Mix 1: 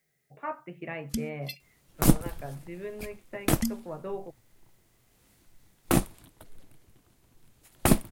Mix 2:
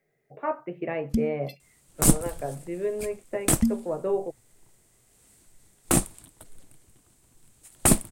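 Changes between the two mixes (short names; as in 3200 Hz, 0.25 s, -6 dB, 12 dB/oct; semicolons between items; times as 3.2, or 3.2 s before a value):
speech: add bell 470 Hz +11 dB 1.8 oct; first sound: add tilt shelf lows +8.5 dB, about 810 Hz; second sound: add bell 8300 Hz +13.5 dB 0.66 oct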